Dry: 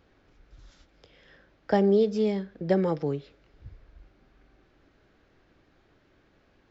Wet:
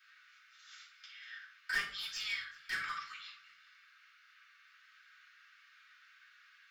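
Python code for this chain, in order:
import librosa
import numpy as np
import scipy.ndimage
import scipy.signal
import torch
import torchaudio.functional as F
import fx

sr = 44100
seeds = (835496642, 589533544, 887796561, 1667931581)

y = scipy.signal.sosfilt(scipy.signal.butter(16, 1200.0, 'highpass', fs=sr, output='sos'), x)
y = np.clip(y, -10.0 ** (-38.5 / 20.0), 10.0 ** (-38.5 / 20.0))
y = fx.echo_feedback(y, sr, ms=383, feedback_pct=26, wet_db=-24)
y = fx.room_shoebox(y, sr, seeds[0], volume_m3=320.0, walls='furnished', distance_m=7.3)
y = y * 10.0 ** (-2.5 / 20.0)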